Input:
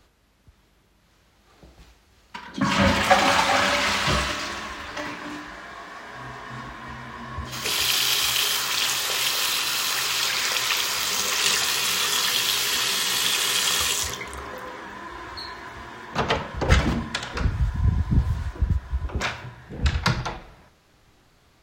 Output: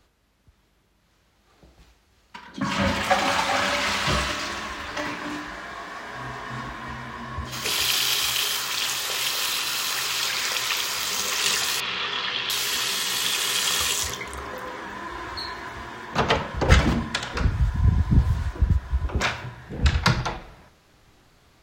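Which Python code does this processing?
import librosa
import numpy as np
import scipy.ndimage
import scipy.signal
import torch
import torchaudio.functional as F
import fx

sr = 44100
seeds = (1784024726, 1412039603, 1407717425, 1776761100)

y = fx.lowpass(x, sr, hz=3700.0, slope=24, at=(11.8, 12.5))
y = fx.rider(y, sr, range_db=4, speed_s=2.0)
y = F.gain(torch.from_numpy(y), -1.0).numpy()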